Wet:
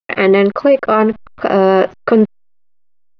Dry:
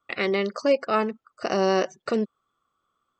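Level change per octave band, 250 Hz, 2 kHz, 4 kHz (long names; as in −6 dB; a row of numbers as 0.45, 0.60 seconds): +13.5, +10.5, +4.5 decibels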